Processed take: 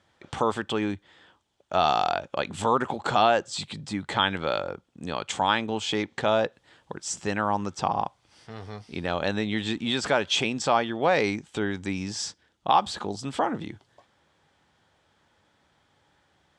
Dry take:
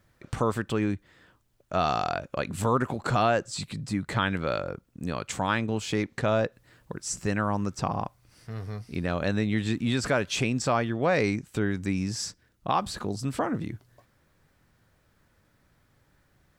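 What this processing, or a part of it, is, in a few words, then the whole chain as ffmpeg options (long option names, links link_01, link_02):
car door speaker: -af "highpass=99,equalizer=frequency=120:width_type=q:width=4:gain=-10,equalizer=frequency=180:width_type=q:width=4:gain=-4,equalizer=frequency=260:width_type=q:width=4:gain=-3,equalizer=frequency=840:width_type=q:width=4:gain=8,equalizer=frequency=3300:width_type=q:width=4:gain=9,lowpass=frequency=8500:width=0.5412,lowpass=frequency=8500:width=1.3066,volume=1dB"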